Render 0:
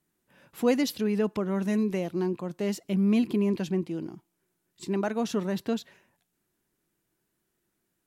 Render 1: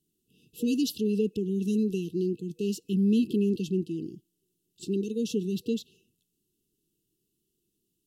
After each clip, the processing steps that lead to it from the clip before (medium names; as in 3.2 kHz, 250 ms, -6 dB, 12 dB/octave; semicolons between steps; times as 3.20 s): FFT band-reject 480–2600 Hz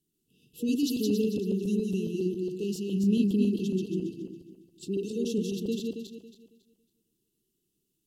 backward echo that repeats 138 ms, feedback 52%, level -2.5 dB; trim -2.5 dB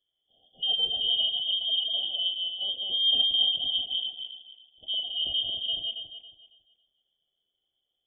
frequency inversion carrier 3.4 kHz